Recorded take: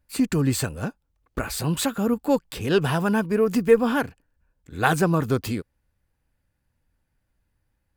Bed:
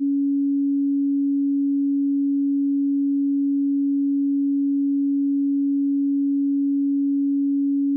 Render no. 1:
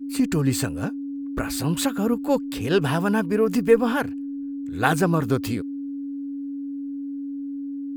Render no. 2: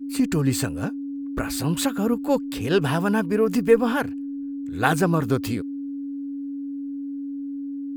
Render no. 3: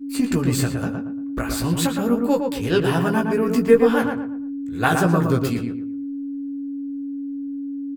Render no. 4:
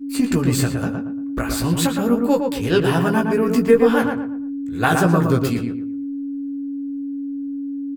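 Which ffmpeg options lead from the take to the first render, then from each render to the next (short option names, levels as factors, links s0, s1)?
-filter_complex "[1:a]volume=0.299[s0];[0:a][s0]amix=inputs=2:normalize=0"
-af anull
-filter_complex "[0:a]asplit=2[s0][s1];[s1]adelay=17,volume=0.562[s2];[s0][s2]amix=inputs=2:normalize=0,asplit=2[s3][s4];[s4]adelay=115,lowpass=f=2000:p=1,volume=0.631,asplit=2[s5][s6];[s6]adelay=115,lowpass=f=2000:p=1,volume=0.34,asplit=2[s7][s8];[s8]adelay=115,lowpass=f=2000:p=1,volume=0.34,asplit=2[s9][s10];[s10]adelay=115,lowpass=f=2000:p=1,volume=0.34[s11];[s5][s7][s9][s11]amix=inputs=4:normalize=0[s12];[s3][s12]amix=inputs=2:normalize=0"
-af "volume=1.26,alimiter=limit=0.708:level=0:latency=1"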